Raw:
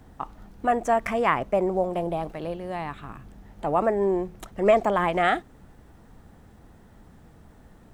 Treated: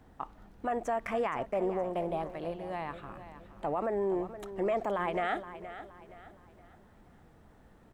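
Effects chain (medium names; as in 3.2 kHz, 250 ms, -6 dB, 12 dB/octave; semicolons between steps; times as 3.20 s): tone controls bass -4 dB, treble -5 dB; peak limiter -18 dBFS, peak gain reduction 10.5 dB; on a send: feedback delay 470 ms, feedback 38%, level -13 dB; on the sum: trim -5 dB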